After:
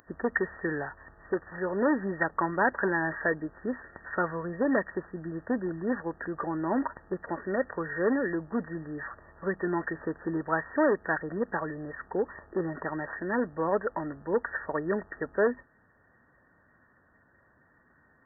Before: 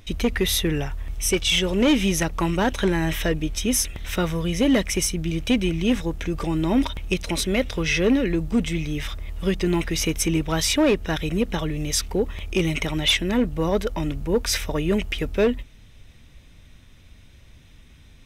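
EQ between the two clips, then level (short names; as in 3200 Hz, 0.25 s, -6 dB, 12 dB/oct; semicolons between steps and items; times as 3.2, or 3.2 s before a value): HPF 220 Hz 6 dB/oct; brick-wall FIR low-pass 1900 Hz; tilt +3.5 dB/oct; 0.0 dB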